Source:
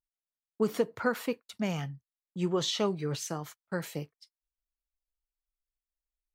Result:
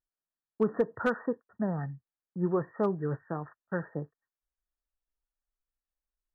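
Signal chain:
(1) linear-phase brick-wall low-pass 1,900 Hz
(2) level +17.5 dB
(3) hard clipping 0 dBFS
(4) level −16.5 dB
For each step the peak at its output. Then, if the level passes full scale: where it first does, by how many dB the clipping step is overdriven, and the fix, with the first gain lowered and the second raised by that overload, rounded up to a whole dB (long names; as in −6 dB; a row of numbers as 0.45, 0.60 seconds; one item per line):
−13.5, +4.0, 0.0, −16.5 dBFS
step 2, 4.0 dB
step 2 +13.5 dB, step 4 −12.5 dB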